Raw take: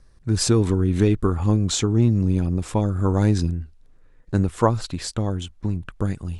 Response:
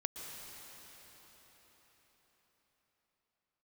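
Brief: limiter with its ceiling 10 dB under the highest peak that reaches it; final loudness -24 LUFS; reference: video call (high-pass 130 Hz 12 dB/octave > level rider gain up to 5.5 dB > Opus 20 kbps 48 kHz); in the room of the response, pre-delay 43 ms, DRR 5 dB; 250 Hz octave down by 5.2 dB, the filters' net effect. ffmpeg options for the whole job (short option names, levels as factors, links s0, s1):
-filter_complex "[0:a]equalizer=f=250:t=o:g=-6.5,alimiter=limit=0.158:level=0:latency=1,asplit=2[s0][s1];[1:a]atrim=start_sample=2205,adelay=43[s2];[s1][s2]afir=irnorm=-1:irlink=0,volume=0.531[s3];[s0][s3]amix=inputs=2:normalize=0,highpass=130,dynaudnorm=m=1.88,volume=1.78" -ar 48000 -c:a libopus -b:a 20k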